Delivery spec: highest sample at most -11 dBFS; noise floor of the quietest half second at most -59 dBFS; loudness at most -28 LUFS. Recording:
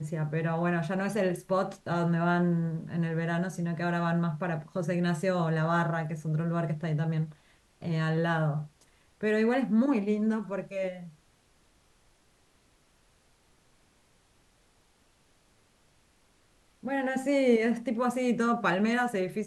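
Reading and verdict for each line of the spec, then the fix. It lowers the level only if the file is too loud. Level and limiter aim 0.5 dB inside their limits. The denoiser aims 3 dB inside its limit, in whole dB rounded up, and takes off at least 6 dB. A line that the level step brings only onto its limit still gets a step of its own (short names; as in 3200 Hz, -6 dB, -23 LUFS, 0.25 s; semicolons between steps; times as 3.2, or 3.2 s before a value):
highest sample -13.5 dBFS: OK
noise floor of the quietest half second -66 dBFS: OK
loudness -29.0 LUFS: OK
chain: none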